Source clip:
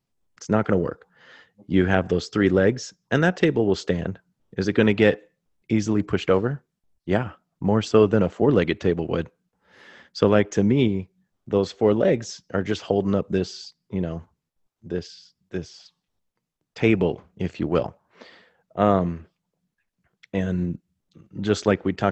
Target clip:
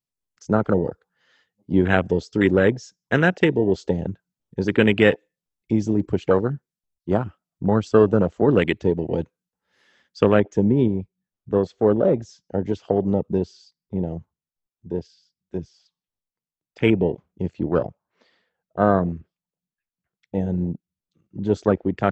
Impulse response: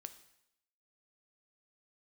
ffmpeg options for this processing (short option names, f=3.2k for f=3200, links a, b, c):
-af "afwtdn=0.0447,asetnsamples=n=441:p=0,asendcmd='10.34 highshelf g 4',highshelf=f=2.9k:g=10.5,volume=1dB"